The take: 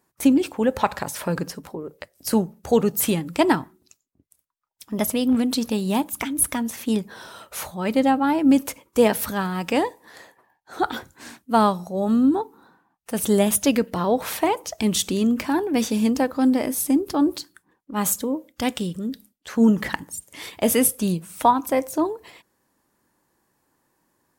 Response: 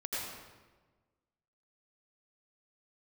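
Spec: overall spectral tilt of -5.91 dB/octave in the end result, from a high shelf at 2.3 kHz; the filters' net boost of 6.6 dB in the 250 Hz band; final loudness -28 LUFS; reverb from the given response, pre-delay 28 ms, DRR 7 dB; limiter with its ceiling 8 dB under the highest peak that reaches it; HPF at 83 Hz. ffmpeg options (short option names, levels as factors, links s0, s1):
-filter_complex "[0:a]highpass=83,equalizer=f=250:t=o:g=7.5,highshelf=f=2300:g=-4,alimiter=limit=0.355:level=0:latency=1,asplit=2[s0][s1];[1:a]atrim=start_sample=2205,adelay=28[s2];[s1][s2]afir=irnorm=-1:irlink=0,volume=0.282[s3];[s0][s3]amix=inputs=2:normalize=0,volume=0.376"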